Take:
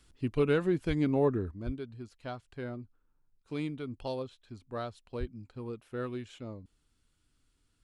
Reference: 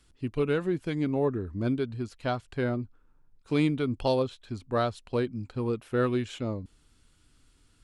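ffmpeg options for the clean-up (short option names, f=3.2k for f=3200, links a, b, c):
-filter_complex "[0:a]asplit=3[a][b][c];[a]afade=t=out:st=0.87:d=0.02[d];[b]highpass=f=140:w=0.5412,highpass=f=140:w=1.3066,afade=t=in:st=0.87:d=0.02,afade=t=out:st=0.99:d=0.02[e];[c]afade=t=in:st=0.99:d=0.02[f];[d][e][f]amix=inputs=3:normalize=0,asplit=3[g][h][i];[g]afade=t=out:st=1.65:d=0.02[j];[h]highpass=f=140:w=0.5412,highpass=f=140:w=1.3066,afade=t=in:st=1.65:d=0.02,afade=t=out:st=1.77:d=0.02[k];[i]afade=t=in:st=1.77:d=0.02[l];[j][k][l]amix=inputs=3:normalize=0,asplit=3[m][n][o];[m]afade=t=out:st=5.19:d=0.02[p];[n]highpass=f=140:w=0.5412,highpass=f=140:w=1.3066,afade=t=in:st=5.19:d=0.02,afade=t=out:st=5.31:d=0.02[q];[o]afade=t=in:st=5.31:d=0.02[r];[p][q][r]amix=inputs=3:normalize=0,asetnsamples=n=441:p=0,asendcmd='1.51 volume volume 10.5dB',volume=0dB"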